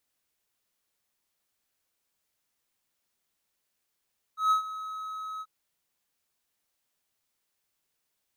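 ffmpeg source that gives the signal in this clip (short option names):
-f lavfi -i "aevalsrc='0.141*(1-4*abs(mod(1280*t+0.25,1)-0.5))':d=1.086:s=44100,afade=t=in:d=0.14,afade=t=out:st=0.14:d=0.11:silence=0.168,afade=t=out:st=1.04:d=0.046"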